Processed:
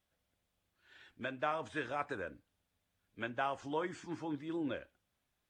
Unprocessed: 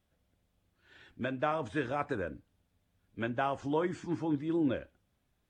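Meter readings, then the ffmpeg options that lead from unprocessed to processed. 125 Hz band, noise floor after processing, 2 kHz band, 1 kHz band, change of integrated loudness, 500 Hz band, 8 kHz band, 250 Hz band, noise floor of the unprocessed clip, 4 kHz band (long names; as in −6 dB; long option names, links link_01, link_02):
−10.0 dB, −84 dBFS, −2.0 dB, −3.5 dB, −5.5 dB, −6.0 dB, can't be measured, −8.5 dB, −77 dBFS, −1.0 dB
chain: -af "lowshelf=frequency=500:gain=-10,volume=-1dB"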